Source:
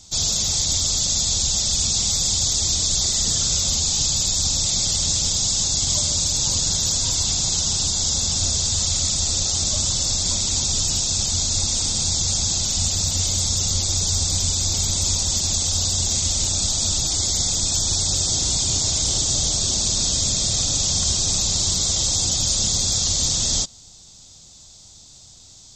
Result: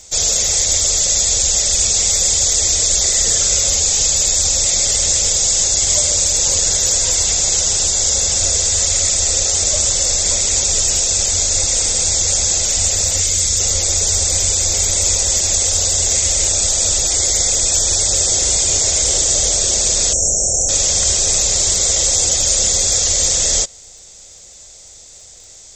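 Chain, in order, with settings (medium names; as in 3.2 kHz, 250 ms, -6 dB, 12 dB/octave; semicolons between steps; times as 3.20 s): ten-band graphic EQ 125 Hz -9 dB, 250 Hz -8 dB, 500 Hz +12 dB, 1 kHz -5 dB, 2 kHz +11 dB, 4 kHz -7 dB, 8 kHz +6 dB; crackle 28 per s -44 dBFS; 13.20–13.60 s: peaking EQ 700 Hz -8 dB 1.4 oct; 20.13–20.69 s: brick-wall FIR band-stop 870–5400 Hz; trim +4 dB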